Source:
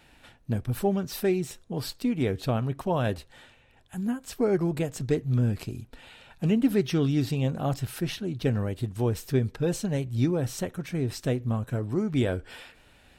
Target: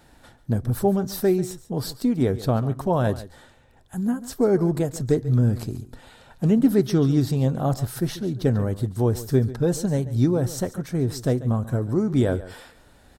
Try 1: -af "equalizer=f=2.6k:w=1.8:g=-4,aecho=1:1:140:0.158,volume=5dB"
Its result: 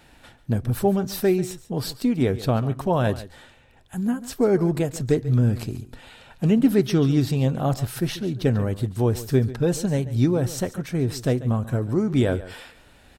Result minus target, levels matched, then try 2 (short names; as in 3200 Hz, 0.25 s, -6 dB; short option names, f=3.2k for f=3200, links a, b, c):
2000 Hz band +3.5 dB
-af "equalizer=f=2.6k:w=1.8:g=-13,aecho=1:1:140:0.158,volume=5dB"